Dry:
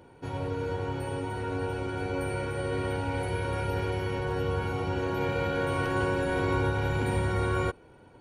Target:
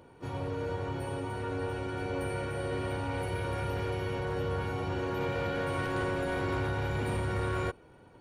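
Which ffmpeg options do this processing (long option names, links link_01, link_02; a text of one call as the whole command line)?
ffmpeg -i in.wav -filter_complex "[0:a]aeval=exprs='0.168*(cos(1*acos(clip(val(0)/0.168,-1,1)))-cos(1*PI/2))+0.0299*(cos(5*acos(clip(val(0)/0.168,-1,1)))-cos(5*PI/2))+0.00335*(cos(7*acos(clip(val(0)/0.168,-1,1)))-cos(7*PI/2))':channel_layout=same,asplit=2[link_01][link_02];[link_02]asetrate=55563,aresample=44100,atempo=0.793701,volume=-12dB[link_03];[link_01][link_03]amix=inputs=2:normalize=0,volume=-7dB" out.wav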